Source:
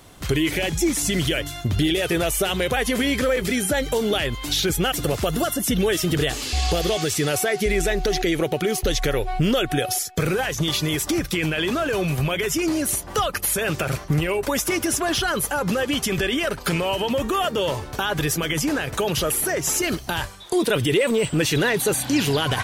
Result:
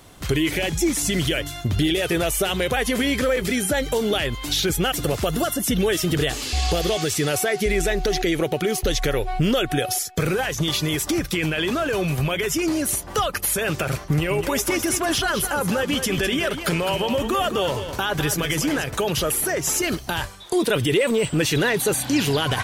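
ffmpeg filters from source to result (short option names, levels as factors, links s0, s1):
-filter_complex "[0:a]asettb=1/sr,asplit=3[s0][s1][s2];[s0]atrim=end=14.004[s3];[s1]atrim=start=14:end=18.84,asetpts=PTS-STARTPTS,afade=t=in:d=0.004:c=qsin,afade=t=out:st=4.836:d=0.004:c=qsin,aecho=1:1:207:0.355,atrim=end_sample=213444[s4];[s2]atrim=start=18.836[s5];[s3][s4]acrossfade=d=0.004:c1=hsin:c2=qsin[s6];[s6][s5]acrossfade=d=0.004:c1=qsin:c2=hsin"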